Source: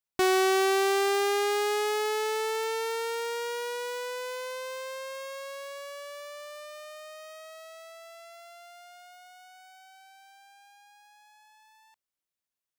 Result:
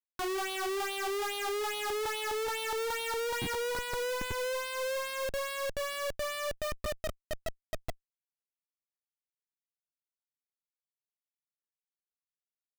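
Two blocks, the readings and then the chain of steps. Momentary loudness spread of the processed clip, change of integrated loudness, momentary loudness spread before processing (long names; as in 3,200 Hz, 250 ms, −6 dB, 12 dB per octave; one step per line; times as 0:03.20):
8 LU, −5.0 dB, 22 LU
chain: auto-filter band-pass sine 2.4 Hz 300–3,800 Hz
comparator with hysteresis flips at −48 dBFS
level +6.5 dB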